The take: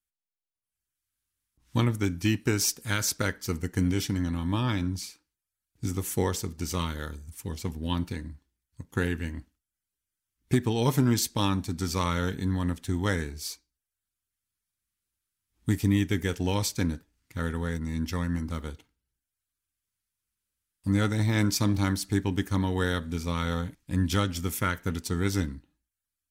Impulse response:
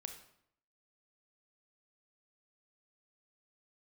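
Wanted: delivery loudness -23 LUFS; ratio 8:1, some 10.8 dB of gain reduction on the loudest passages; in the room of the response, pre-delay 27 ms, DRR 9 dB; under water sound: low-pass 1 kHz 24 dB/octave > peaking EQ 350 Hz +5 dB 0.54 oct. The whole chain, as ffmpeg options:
-filter_complex "[0:a]acompressor=threshold=0.0316:ratio=8,asplit=2[s0][s1];[1:a]atrim=start_sample=2205,adelay=27[s2];[s1][s2]afir=irnorm=-1:irlink=0,volume=0.531[s3];[s0][s3]amix=inputs=2:normalize=0,lowpass=f=1000:w=0.5412,lowpass=f=1000:w=1.3066,equalizer=f=350:t=o:w=0.54:g=5,volume=4.47"

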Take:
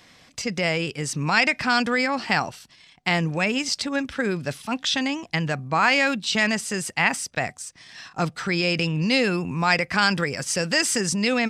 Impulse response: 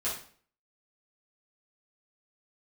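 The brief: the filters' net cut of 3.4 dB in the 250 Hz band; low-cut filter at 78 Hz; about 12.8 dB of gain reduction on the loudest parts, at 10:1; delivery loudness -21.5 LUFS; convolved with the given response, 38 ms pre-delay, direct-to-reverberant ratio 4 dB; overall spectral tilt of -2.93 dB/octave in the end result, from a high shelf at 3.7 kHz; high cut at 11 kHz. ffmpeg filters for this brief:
-filter_complex "[0:a]highpass=78,lowpass=11000,equalizer=f=250:t=o:g=-4.5,highshelf=f=3700:g=3,acompressor=threshold=0.0447:ratio=10,asplit=2[s0][s1];[1:a]atrim=start_sample=2205,adelay=38[s2];[s1][s2]afir=irnorm=-1:irlink=0,volume=0.335[s3];[s0][s3]amix=inputs=2:normalize=0,volume=2.66"

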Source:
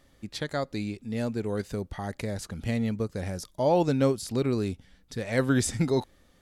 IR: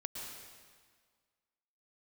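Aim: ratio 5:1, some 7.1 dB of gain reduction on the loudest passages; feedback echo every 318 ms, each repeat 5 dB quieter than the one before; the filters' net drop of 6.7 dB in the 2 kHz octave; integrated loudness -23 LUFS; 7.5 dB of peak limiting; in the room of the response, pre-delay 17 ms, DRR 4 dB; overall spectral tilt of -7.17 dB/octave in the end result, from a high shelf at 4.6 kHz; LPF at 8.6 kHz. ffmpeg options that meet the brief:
-filter_complex "[0:a]lowpass=8600,equalizer=f=2000:t=o:g=-7.5,highshelf=f=4600:g=-7.5,acompressor=threshold=0.0447:ratio=5,alimiter=level_in=1.26:limit=0.0631:level=0:latency=1,volume=0.794,aecho=1:1:318|636|954|1272|1590|1908|2226:0.562|0.315|0.176|0.0988|0.0553|0.031|0.0173,asplit=2[s0][s1];[1:a]atrim=start_sample=2205,adelay=17[s2];[s1][s2]afir=irnorm=-1:irlink=0,volume=0.668[s3];[s0][s3]amix=inputs=2:normalize=0,volume=3.35"

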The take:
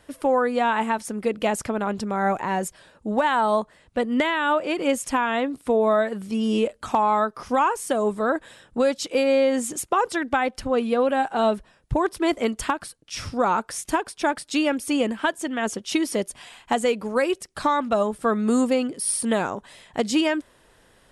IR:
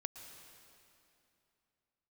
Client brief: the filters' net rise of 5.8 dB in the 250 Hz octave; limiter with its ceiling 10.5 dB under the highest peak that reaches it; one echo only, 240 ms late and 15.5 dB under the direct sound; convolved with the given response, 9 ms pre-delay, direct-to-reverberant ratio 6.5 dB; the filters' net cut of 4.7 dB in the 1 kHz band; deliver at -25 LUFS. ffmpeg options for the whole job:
-filter_complex "[0:a]equalizer=f=250:t=o:g=7,equalizer=f=1000:t=o:g=-6.5,alimiter=limit=0.141:level=0:latency=1,aecho=1:1:240:0.168,asplit=2[s0][s1];[1:a]atrim=start_sample=2205,adelay=9[s2];[s1][s2]afir=irnorm=-1:irlink=0,volume=0.631[s3];[s0][s3]amix=inputs=2:normalize=0,volume=0.944"

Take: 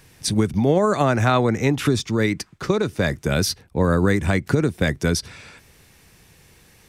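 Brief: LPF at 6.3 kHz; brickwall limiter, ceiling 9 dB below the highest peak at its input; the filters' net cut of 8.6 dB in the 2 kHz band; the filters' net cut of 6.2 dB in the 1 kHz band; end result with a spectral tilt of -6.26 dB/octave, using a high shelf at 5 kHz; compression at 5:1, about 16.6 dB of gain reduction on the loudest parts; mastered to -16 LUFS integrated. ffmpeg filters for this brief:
-af "lowpass=6300,equalizer=f=1000:t=o:g=-6,equalizer=f=2000:t=o:g=-8,highshelf=f=5000:g=-7.5,acompressor=threshold=0.0224:ratio=5,volume=15,alimiter=limit=0.531:level=0:latency=1"

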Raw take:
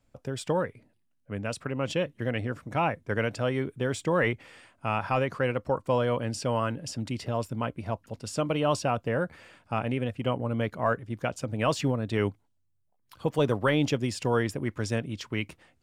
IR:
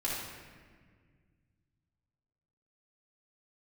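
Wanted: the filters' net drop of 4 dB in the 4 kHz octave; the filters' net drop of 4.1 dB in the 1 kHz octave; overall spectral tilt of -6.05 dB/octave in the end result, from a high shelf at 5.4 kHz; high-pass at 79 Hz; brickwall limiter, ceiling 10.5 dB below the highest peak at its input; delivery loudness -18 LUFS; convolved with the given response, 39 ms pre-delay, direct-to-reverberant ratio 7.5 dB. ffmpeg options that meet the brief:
-filter_complex "[0:a]highpass=79,equalizer=f=1000:t=o:g=-5,equalizer=f=4000:t=o:g=-3.5,highshelf=f=5400:g=-4.5,alimiter=level_in=1.06:limit=0.0631:level=0:latency=1,volume=0.944,asplit=2[s0][s1];[1:a]atrim=start_sample=2205,adelay=39[s2];[s1][s2]afir=irnorm=-1:irlink=0,volume=0.211[s3];[s0][s3]amix=inputs=2:normalize=0,volume=7.5"

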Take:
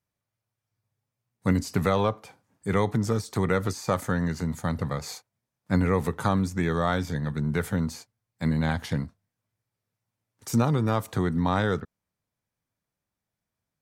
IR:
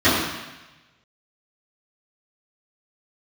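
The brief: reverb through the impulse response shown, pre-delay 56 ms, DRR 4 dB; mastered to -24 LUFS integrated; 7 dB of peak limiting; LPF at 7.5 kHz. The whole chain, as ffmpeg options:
-filter_complex "[0:a]lowpass=7500,alimiter=limit=0.126:level=0:latency=1,asplit=2[s0][s1];[1:a]atrim=start_sample=2205,adelay=56[s2];[s1][s2]afir=irnorm=-1:irlink=0,volume=0.0422[s3];[s0][s3]amix=inputs=2:normalize=0,volume=1.41"

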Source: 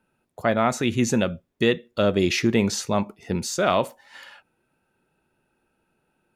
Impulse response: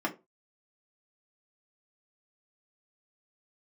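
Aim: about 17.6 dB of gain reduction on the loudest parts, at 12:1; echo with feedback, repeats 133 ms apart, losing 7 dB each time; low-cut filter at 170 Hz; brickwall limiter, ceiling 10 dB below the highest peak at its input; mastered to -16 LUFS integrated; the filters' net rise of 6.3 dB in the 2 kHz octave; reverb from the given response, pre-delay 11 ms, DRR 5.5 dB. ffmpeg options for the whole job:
-filter_complex "[0:a]highpass=170,equalizer=f=2000:t=o:g=8,acompressor=threshold=0.0251:ratio=12,alimiter=level_in=1.12:limit=0.0631:level=0:latency=1,volume=0.891,aecho=1:1:133|266|399|532|665:0.447|0.201|0.0905|0.0407|0.0183,asplit=2[s0][s1];[1:a]atrim=start_sample=2205,adelay=11[s2];[s1][s2]afir=irnorm=-1:irlink=0,volume=0.224[s3];[s0][s3]amix=inputs=2:normalize=0,volume=10.6"

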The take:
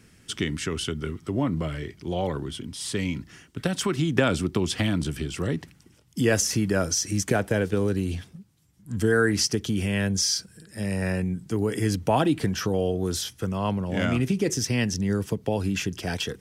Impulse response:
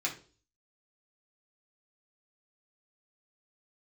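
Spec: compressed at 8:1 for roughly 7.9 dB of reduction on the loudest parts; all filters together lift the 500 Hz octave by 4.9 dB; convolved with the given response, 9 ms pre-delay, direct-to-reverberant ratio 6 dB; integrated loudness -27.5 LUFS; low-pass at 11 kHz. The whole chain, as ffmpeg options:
-filter_complex "[0:a]lowpass=11000,equalizer=f=500:t=o:g=6,acompressor=threshold=0.0794:ratio=8,asplit=2[s0][s1];[1:a]atrim=start_sample=2205,adelay=9[s2];[s1][s2]afir=irnorm=-1:irlink=0,volume=0.282[s3];[s0][s3]amix=inputs=2:normalize=0,volume=1.06"

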